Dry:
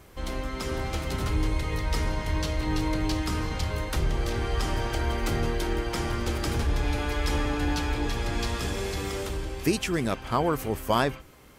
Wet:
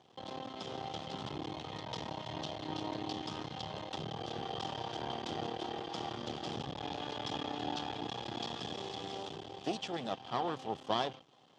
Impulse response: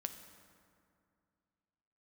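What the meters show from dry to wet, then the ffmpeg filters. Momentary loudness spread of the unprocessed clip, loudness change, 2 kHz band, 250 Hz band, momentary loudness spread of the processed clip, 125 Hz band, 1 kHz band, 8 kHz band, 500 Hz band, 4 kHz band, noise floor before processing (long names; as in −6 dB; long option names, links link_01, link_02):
5 LU, −11.0 dB, −14.5 dB, −11.5 dB, 6 LU, −17.5 dB, −6.5 dB, −16.0 dB, −10.0 dB, −5.0 dB, −43 dBFS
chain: -af "aeval=exprs='max(val(0),0)':channel_layout=same,highpass=frequency=120:width=0.5412,highpass=frequency=120:width=1.3066,equalizer=frequency=770:width_type=q:width=4:gain=10,equalizer=frequency=1500:width_type=q:width=4:gain=-6,equalizer=frequency=2200:width_type=q:width=4:gain=-8,equalizer=frequency=3300:width_type=q:width=4:gain=10,lowpass=frequency=6000:width=0.5412,lowpass=frequency=6000:width=1.3066,volume=-7dB"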